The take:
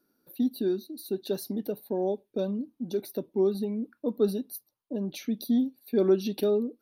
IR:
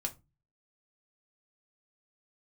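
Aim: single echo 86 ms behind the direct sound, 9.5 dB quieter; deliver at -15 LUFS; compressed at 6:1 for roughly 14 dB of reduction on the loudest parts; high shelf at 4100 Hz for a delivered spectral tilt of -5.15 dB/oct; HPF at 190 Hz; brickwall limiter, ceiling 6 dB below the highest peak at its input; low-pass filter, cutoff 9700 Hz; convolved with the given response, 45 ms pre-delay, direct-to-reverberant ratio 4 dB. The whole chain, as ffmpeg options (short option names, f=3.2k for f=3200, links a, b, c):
-filter_complex "[0:a]highpass=190,lowpass=9.7k,highshelf=f=4.1k:g=3.5,acompressor=threshold=-34dB:ratio=6,alimiter=level_in=6dB:limit=-24dB:level=0:latency=1,volume=-6dB,aecho=1:1:86:0.335,asplit=2[a][b];[1:a]atrim=start_sample=2205,adelay=45[c];[b][c]afir=irnorm=-1:irlink=0,volume=-5dB[d];[a][d]amix=inputs=2:normalize=0,volume=23.5dB"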